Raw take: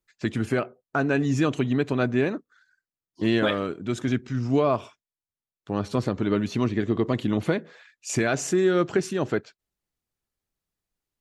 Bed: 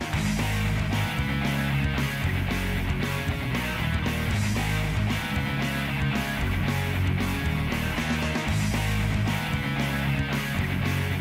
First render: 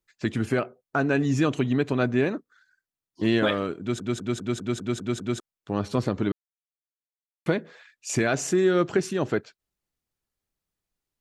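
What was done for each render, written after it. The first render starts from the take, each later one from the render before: 3.80 s: stutter in place 0.20 s, 8 plays; 6.32–7.46 s: mute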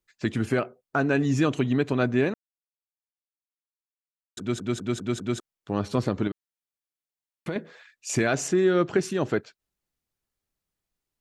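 2.34–4.37 s: mute; 6.27–7.56 s: compression 3:1, threshold -28 dBFS; 8.48–8.96 s: distance through air 65 m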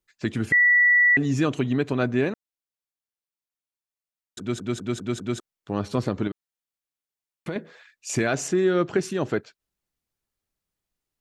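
0.52–1.17 s: bleep 1.95 kHz -14 dBFS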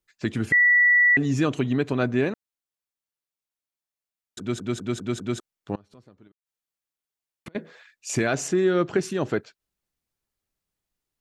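5.75–7.55 s: inverted gate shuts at -27 dBFS, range -27 dB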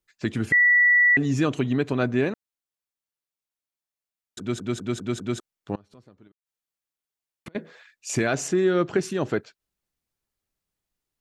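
no audible change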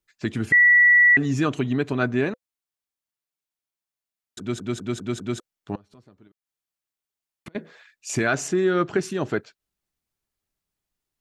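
band-stop 510 Hz, Q 12; dynamic bell 1.4 kHz, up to +6 dB, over -33 dBFS, Q 1.6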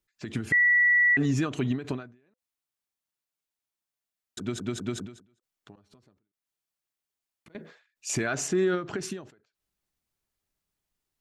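peak limiter -17.5 dBFS, peak gain reduction 8.5 dB; endings held to a fixed fall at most 130 dB/s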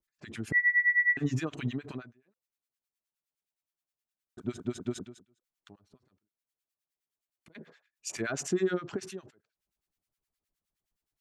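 harmonic tremolo 9.6 Hz, depth 100%, crossover 1.1 kHz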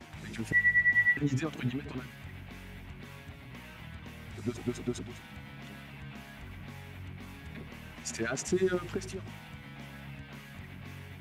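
add bed -19.5 dB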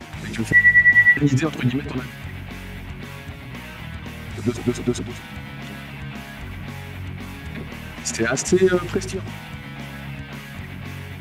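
trim +12 dB

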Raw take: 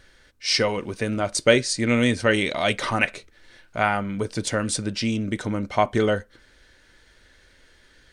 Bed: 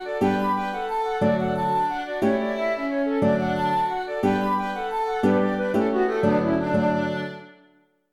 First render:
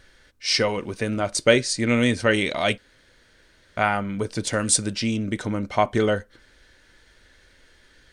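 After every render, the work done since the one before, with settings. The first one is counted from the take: 2.78–3.77 s: room tone; 4.53–4.94 s: peaking EQ 8.7 kHz +9 dB 1.6 oct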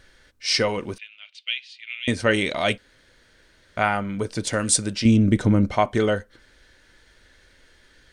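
0.98–2.08 s: Butterworth band-pass 2.9 kHz, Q 2.8; 5.05–5.75 s: bass shelf 380 Hz +12 dB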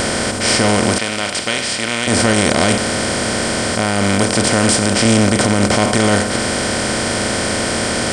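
spectral levelling over time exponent 0.2; peak limiter -2.5 dBFS, peak gain reduction 6 dB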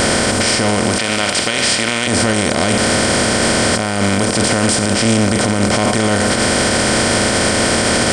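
in parallel at -2 dB: compressor with a negative ratio -20 dBFS; on the sum: peak limiter -4.5 dBFS, peak gain reduction 6.5 dB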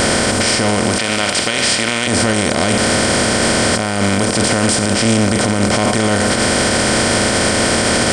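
no audible change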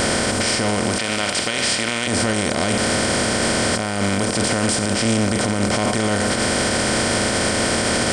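trim -5 dB

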